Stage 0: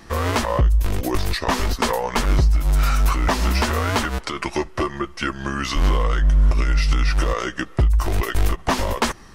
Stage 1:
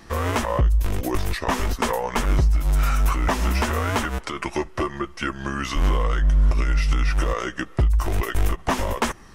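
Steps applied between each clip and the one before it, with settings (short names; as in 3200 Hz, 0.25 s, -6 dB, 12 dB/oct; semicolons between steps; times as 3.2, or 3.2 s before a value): dynamic EQ 4400 Hz, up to -7 dB, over -46 dBFS, Q 2.6; gain -2 dB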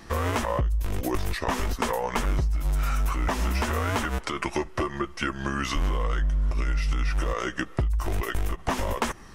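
compressor, threshold -22 dBFS, peak gain reduction 8 dB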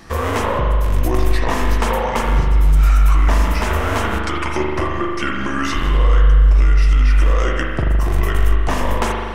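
spring tank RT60 1.9 s, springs 40 ms, chirp 50 ms, DRR -1 dB; gain +4.5 dB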